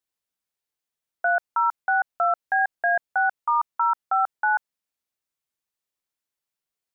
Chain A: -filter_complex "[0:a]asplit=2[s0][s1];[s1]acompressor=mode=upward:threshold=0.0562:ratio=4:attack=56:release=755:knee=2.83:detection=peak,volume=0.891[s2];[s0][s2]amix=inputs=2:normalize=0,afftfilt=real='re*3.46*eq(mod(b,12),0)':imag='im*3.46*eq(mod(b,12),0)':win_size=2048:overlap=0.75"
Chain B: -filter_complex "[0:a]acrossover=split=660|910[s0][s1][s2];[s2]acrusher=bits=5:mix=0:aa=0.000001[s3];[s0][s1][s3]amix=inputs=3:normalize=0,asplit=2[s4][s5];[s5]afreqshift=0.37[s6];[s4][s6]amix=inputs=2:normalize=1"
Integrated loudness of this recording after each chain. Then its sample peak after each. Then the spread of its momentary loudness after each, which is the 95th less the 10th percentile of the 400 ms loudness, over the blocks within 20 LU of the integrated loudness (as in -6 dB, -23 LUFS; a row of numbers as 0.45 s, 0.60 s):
-17.0 LUFS, -26.0 LUFS; -6.5 dBFS, -14.5 dBFS; 20 LU, 5 LU